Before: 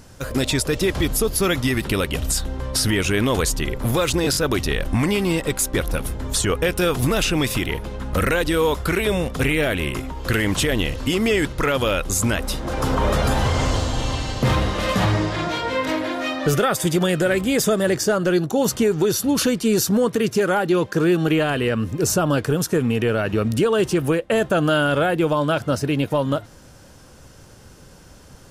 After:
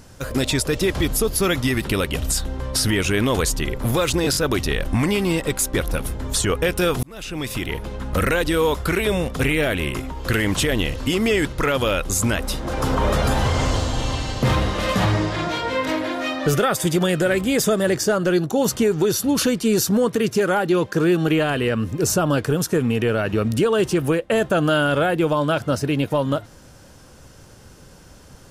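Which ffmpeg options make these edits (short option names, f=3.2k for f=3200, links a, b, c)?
-filter_complex "[0:a]asplit=2[a][b];[a]atrim=end=7.03,asetpts=PTS-STARTPTS,afade=t=out:st=7.026:d=0.004:c=hsin[c];[b]atrim=start=7.03,asetpts=PTS-STARTPTS,afade=t=in:d=0.84[d];[c][d]concat=n=2:v=0:a=1"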